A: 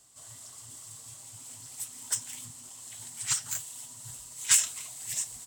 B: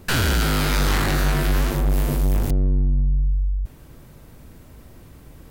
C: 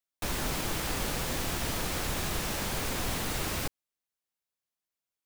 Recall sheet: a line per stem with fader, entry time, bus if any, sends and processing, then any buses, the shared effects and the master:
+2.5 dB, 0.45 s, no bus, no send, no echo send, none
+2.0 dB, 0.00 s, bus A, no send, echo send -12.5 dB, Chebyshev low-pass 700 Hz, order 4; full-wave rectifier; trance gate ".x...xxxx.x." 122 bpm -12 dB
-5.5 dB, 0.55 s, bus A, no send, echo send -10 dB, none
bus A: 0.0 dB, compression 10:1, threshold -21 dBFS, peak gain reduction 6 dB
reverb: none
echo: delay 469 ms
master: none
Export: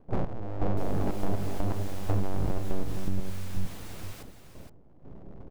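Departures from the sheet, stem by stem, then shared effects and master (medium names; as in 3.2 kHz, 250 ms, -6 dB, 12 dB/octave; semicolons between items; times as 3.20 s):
stem A: muted; stem C -5.5 dB -> -14.0 dB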